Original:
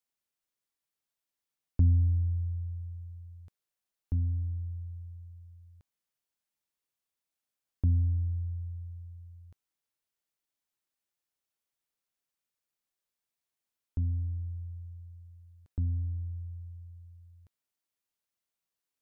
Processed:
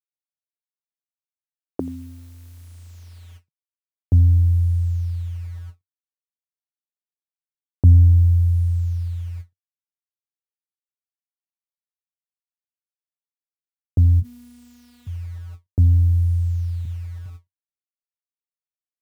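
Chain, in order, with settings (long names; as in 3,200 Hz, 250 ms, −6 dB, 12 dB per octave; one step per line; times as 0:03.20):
low-pass that shuts in the quiet parts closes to 350 Hz, open at −32 dBFS
in parallel at 0 dB: downward compressor 20 to 1, threshold −36 dBFS, peak gain reduction 17 dB
0:16.85–0:17.26: on the sum: Chebyshev low-pass filter 500 Hz, order 8
on a send: single-tap delay 84 ms −21.5 dB
on the sum: bit reduction 10 bits
0:14.22–0:15.07: phases set to zero 242 Hz
high-pass filter sweep 350 Hz → 96 Hz, 0:02.29–0:04.08
every ending faded ahead of time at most 390 dB per second
level +7.5 dB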